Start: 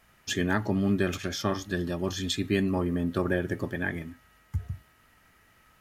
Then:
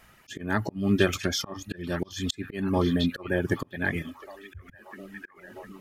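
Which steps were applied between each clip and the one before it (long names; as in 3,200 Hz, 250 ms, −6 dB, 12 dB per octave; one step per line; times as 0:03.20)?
echo through a band-pass that steps 707 ms, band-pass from 3,100 Hz, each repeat −0.7 octaves, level −7.5 dB
volume swells 311 ms
reverb reduction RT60 0.78 s
level +6 dB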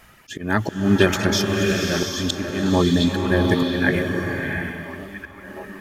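slow-attack reverb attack 700 ms, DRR 1 dB
level +6 dB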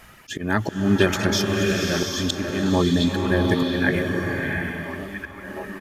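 downsampling to 32,000 Hz
in parallel at 0 dB: downward compressor, threshold −28 dBFS, peak gain reduction 17 dB
on the sum: level −3.5 dB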